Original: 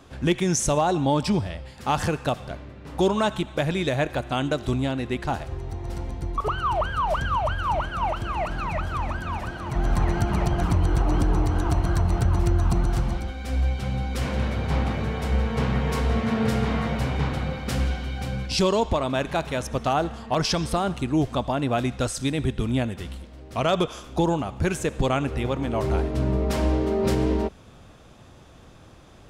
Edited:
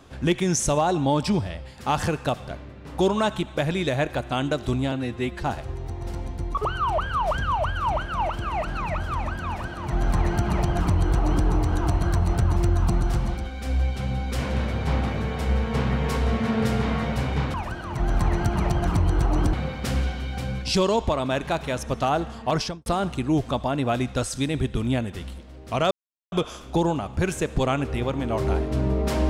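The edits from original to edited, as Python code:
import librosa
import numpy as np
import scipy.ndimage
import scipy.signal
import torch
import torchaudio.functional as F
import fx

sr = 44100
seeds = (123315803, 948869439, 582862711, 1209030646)

y = fx.studio_fade_out(x, sr, start_s=20.39, length_s=0.31)
y = fx.edit(y, sr, fx.stretch_span(start_s=4.92, length_s=0.34, factor=1.5),
    fx.duplicate(start_s=9.3, length_s=1.99, to_s=17.37),
    fx.insert_silence(at_s=23.75, length_s=0.41), tone=tone)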